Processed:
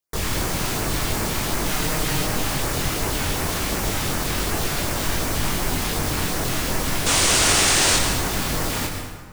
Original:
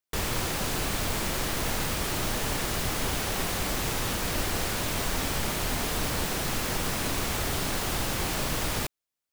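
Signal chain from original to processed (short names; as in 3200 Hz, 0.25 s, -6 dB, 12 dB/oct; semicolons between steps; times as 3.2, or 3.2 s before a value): LFO notch sine 2.7 Hz 450–3700 Hz; 1.68–2.25 comb 6.5 ms, depth 59%; 7.06–7.97 painted sound noise 300–9900 Hz -24 dBFS; chorus 1.3 Hz, delay 20 ms, depth 3.9 ms; plate-style reverb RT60 1.6 s, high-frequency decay 0.6×, pre-delay 90 ms, DRR 3.5 dB; gain +7.5 dB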